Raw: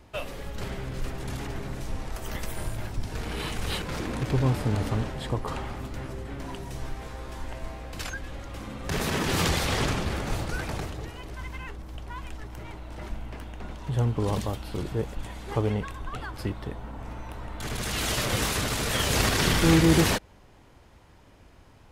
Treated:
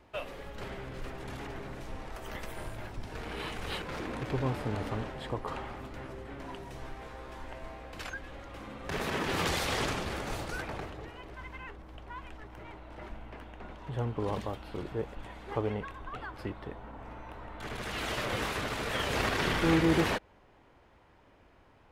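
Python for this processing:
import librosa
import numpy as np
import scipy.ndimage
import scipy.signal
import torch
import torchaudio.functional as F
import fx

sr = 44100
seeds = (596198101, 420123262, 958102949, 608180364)

y = fx.bass_treble(x, sr, bass_db=-7, treble_db=fx.steps((0.0, -9.0), (9.46, -2.0), (10.61, -13.0)))
y = y * 10.0 ** (-3.0 / 20.0)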